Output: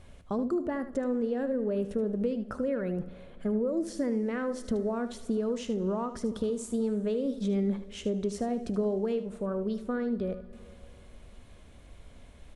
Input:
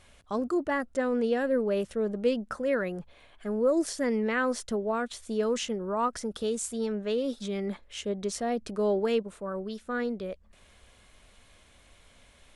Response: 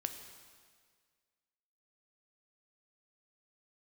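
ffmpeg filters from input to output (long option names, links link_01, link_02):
-filter_complex "[0:a]acompressor=threshold=-33dB:ratio=6,tiltshelf=frequency=700:gain=7,aecho=1:1:76:0.251,asplit=2[link_01][link_02];[1:a]atrim=start_sample=2205,asetrate=25578,aresample=44100[link_03];[link_02][link_03]afir=irnorm=-1:irlink=0,volume=-12dB[link_04];[link_01][link_04]amix=inputs=2:normalize=0"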